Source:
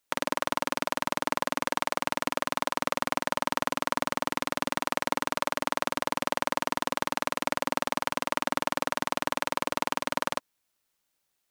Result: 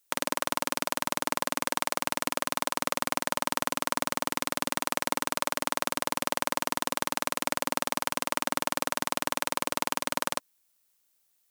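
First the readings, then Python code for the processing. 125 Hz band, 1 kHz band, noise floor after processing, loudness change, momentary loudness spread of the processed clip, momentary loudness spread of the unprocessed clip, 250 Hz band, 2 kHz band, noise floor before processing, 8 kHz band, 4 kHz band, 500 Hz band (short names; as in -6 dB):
-2.0 dB, -1.5 dB, -71 dBFS, -0.5 dB, 1 LU, 1 LU, -2.0 dB, -1.0 dB, -79 dBFS, +5.5 dB, +1.5 dB, -2.0 dB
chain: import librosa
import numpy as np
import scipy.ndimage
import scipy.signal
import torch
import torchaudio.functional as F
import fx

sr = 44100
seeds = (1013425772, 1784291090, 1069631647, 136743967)

y = fx.high_shelf(x, sr, hz=5700.0, db=11.5)
y = y * 10.0 ** (-2.0 / 20.0)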